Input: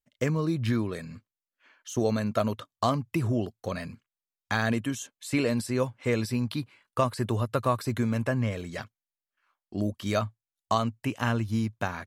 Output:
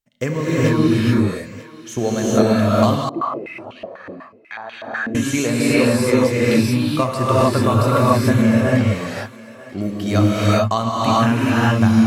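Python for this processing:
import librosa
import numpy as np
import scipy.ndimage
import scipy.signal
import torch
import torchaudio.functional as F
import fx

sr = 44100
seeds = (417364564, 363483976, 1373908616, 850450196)

y = fx.echo_thinned(x, sr, ms=941, feedback_pct=25, hz=610.0, wet_db=-16.5)
y = fx.rev_gated(y, sr, seeds[0], gate_ms=460, shape='rising', drr_db=-7.0)
y = fx.filter_held_bandpass(y, sr, hz=8.1, low_hz=340.0, high_hz=2900.0, at=(3.09, 5.15))
y = y * 10.0 ** (4.5 / 20.0)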